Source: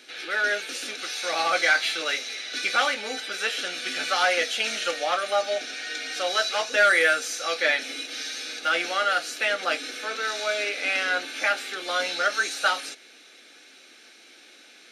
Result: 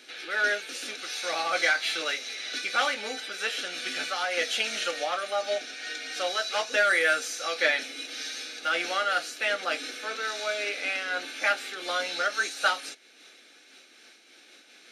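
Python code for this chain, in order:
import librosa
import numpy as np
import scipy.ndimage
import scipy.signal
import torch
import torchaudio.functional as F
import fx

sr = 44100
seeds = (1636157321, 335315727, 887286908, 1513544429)

y = fx.am_noise(x, sr, seeds[0], hz=5.7, depth_pct=65)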